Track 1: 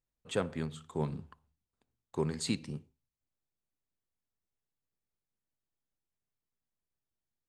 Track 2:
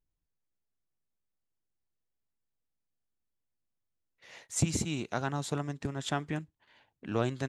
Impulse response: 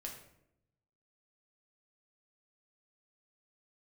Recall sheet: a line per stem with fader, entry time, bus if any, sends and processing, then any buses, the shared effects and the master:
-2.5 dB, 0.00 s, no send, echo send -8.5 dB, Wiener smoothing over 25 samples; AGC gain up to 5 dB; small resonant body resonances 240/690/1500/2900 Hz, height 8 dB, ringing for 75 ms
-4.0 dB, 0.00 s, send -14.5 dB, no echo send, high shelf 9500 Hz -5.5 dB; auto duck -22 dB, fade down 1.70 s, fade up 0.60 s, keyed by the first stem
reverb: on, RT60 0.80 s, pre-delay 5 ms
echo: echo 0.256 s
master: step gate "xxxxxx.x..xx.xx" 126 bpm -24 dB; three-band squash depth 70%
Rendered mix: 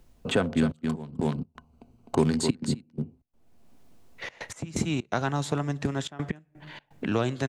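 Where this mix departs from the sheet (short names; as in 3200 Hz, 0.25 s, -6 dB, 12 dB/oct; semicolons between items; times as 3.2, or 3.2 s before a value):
stem 1 -2.5 dB -> +8.0 dB; stem 2 -4.0 dB -> +4.0 dB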